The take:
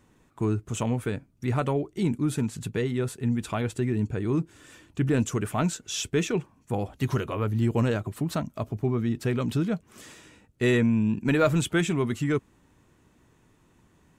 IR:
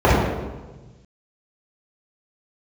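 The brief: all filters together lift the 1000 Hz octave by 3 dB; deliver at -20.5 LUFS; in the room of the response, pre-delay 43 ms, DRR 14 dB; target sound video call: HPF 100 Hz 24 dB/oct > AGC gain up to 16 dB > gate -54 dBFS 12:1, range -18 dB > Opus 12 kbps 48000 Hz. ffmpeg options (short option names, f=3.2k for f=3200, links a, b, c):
-filter_complex "[0:a]equalizer=f=1k:t=o:g=4,asplit=2[a][b];[1:a]atrim=start_sample=2205,adelay=43[c];[b][c]afir=irnorm=-1:irlink=0,volume=-41.5dB[d];[a][d]amix=inputs=2:normalize=0,highpass=f=100:w=0.5412,highpass=f=100:w=1.3066,dynaudnorm=m=16dB,agate=range=-18dB:threshold=-54dB:ratio=12,volume=6.5dB" -ar 48000 -c:a libopus -b:a 12k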